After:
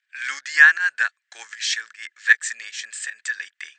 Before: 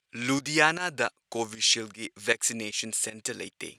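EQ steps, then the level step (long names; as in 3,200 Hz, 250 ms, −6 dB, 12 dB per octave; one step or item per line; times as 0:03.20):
dynamic equaliser 2,500 Hz, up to −4 dB, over −41 dBFS, Q 2.8
high-pass with resonance 1,700 Hz, resonance Q 10
linear-phase brick-wall low-pass 8,600 Hz
−2.5 dB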